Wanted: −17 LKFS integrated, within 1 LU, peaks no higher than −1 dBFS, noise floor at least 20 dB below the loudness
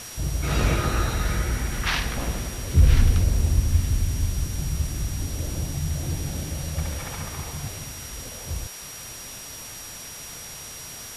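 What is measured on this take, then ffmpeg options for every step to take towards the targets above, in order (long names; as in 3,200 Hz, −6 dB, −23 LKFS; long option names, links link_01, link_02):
interfering tone 5,700 Hz; level of the tone −41 dBFS; background noise floor −39 dBFS; target noise floor −47 dBFS; integrated loudness −27.0 LKFS; sample peak −6.0 dBFS; target loudness −17.0 LKFS
→ -af "bandreject=frequency=5700:width=30"
-af "afftdn=noise_reduction=8:noise_floor=-39"
-af "volume=10dB,alimiter=limit=-1dB:level=0:latency=1"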